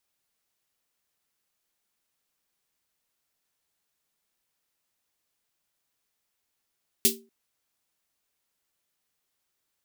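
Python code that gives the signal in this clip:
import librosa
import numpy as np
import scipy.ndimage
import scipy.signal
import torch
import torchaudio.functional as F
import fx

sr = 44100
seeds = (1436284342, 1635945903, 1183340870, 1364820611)

y = fx.drum_snare(sr, seeds[0], length_s=0.24, hz=230.0, second_hz=390.0, noise_db=11.5, noise_from_hz=2900.0, decay_s=0.36, noise_decay_s=0.18)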